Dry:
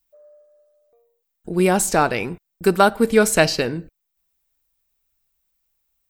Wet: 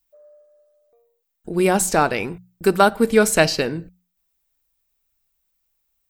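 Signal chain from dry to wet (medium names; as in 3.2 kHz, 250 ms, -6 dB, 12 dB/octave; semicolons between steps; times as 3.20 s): hum notches 60/120/180 Hz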